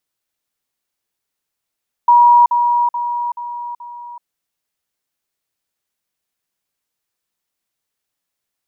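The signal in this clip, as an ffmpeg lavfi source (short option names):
-f lavfi -i "aevalsrc='pow(10,(-5.5-6*floor(t/0.43))/20)*sin(2*PI*959*t)*clip(min(mod(t,0.43),0.38-mod(t,0.43))/0.005,0,1)':d=2.15:s=44100"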